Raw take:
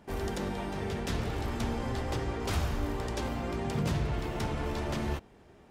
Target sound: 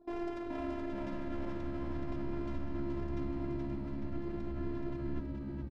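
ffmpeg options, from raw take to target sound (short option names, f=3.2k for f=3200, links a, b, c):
-filter_complex "[0:a]highpass=130,anlmdn=0.00251,asubboost=boost=9.5:cutoff=210,areverse,acompressor=threshold=-35dB:ratio=16,areverse,alimiter=level_in=16dB:limit=-24dB:level=0:latency=1:release=36,volume=-16dB,asplit=2[a][b];[b]acrusher=samples=10:mix=1:aa=0.000001,volume=-4.5dB[c];[a][c]amix=inputs=2:normalize=0,adynamicsmooth=sensitivity=7:basefreq=2.2k,afftfilt=real='hypot(re,im)*cos(PI*b)':imag='0':win_size=512:overlap=0.75,asplit=8[d][e][f][g][h][i][j][k];[e]adelay=425,afreqshift=-71,volume=-4dB[l];[f]adelay=850,afreqshift=-142,volume=-9.5dB[m];[g]adelay=1275,afreqshift=-213,volume=-15dB[n];[h]adelay=1700,afreqshift=-284,volume=-20.5dB[o];[i]adelay=2125,afreqshift=-355,volume=-26.1dB[p];[j]adelay=2550,afreqshift=-426,volume=-31.6dB[q];[k]adelay=2975,afreqshift=-497,volume=-37.1dB[r];[d][l][m][n][o][p][q][r]amix=inputs=8:normalize=0,volume=9.5dB"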